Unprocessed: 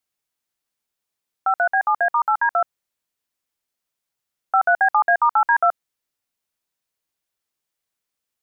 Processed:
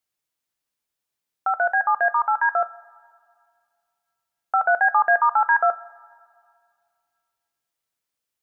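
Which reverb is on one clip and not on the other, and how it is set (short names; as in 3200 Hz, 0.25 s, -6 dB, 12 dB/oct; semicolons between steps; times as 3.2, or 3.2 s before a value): two-slope reverb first 0.27 s, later 2.2 s, from -18 dB, DRR 12.5 dB; gain -1.5 dB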